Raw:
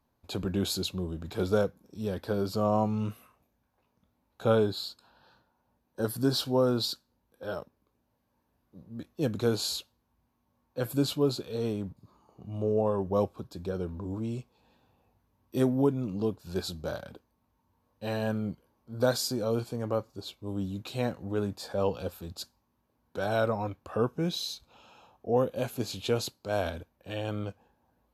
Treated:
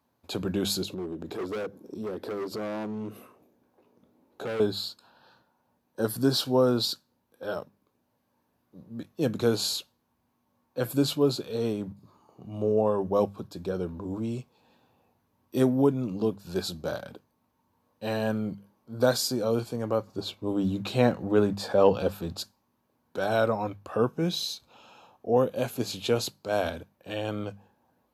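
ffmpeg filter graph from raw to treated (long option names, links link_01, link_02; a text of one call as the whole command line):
ffmpeg -i in.wav -filter_complex "[0:a]asettb=1/sr,asplit=3[link_01][link_02][link_03];[link_01]atrim=end=0.834[link_04];[link_02]atrim=start=0.83:end=4.6,asetpts=PTS-STARTPTS,afade=type=in:duration=0.004:curve=qsin,afade=type=out:start_time=3.766:duration=0.004:curve=qsin,equalizer=frequency=370:width=0.92:gain=14.5,volume=20.5dB,asoftclip=hard,volume=-20.5dB,acompressor=threshold=-36dB:ratio=5:attack=3.2:release=140:knee=1:detection=peak[link_05];[link_03]atrim=start=4.596[link_06];[link_04][link_05]acrossfade=duration=0.004:curve1=hsin:curve2=qsin[link_07];[link_07][link_06]acrossfade=duration=0.004:curve1=qsin:curve2=hsin,asettb=1/sr,asplit=3[link_08][link_09][link_10];[link_08]atrim=end=20.074[link_11];[link_09]atrim=start=20.07:end=22.41,asetpts=PTS-STARTPTS,afade=type=in:duration=0.004:curve=qsin,afade=type=out:start_time=2.336:duration=0.004:curve=qsin,highshelf=frequency=4600:gain=-8,acontrast=52[link_12];[link_10]atrim=start=22.406[link_13];[link_11][link_12]acrossfade=duration=0.004:curve1=hsin:curve2=qsin[link_14];[link_14][link_13]acrossfade=duration=0.004:curve1=qsin:curve2=hsin,highpass=110,bandreject=frequency=50:width_type=h:width=6,bandreject=frequency=100:width_type=h:width=6,bandreject=frequency=150:width_type=h:width=6,bandreject=frequency=200:width_type=h:width=6,volume=3dB" out.wav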